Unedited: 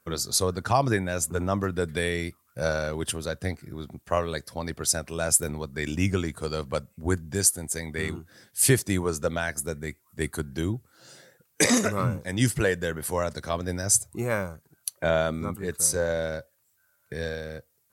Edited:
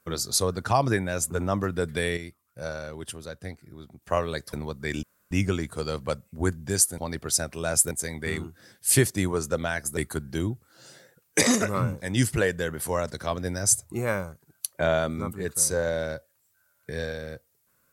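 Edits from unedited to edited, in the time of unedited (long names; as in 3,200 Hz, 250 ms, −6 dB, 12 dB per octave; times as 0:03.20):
0:02.17–0:04.02: clip gain −7.5 dB
0:04.53–0:05.46: move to 0:07.63
0:05.96: splice in room tone 0.28 s
0:09.69–0:10.20: remove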